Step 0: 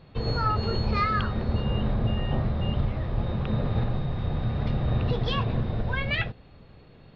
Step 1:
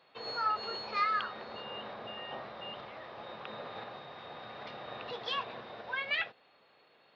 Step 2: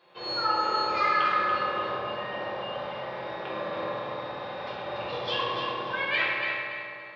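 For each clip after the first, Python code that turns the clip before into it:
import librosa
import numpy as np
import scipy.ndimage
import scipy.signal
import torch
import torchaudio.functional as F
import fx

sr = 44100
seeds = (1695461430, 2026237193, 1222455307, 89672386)

y1 = scipy.signal.sosfilt(scipy.signal.butter(2, 680.0, 'highpass', fs=sr, output='sos'), x)
y1 = y1 * librosa.db_to_amplitude(-3.5)
y2 = fx.echo_feedback(y1, sr, ms=286, feedback_pct=31, wet_db=-6)
y2 = fx.rev_fdn(y2, sr, rt60_s=2.6, lf_ratio=0.85, hf_ratio=0.45, size_ms=17.0, drr_db=-8.0)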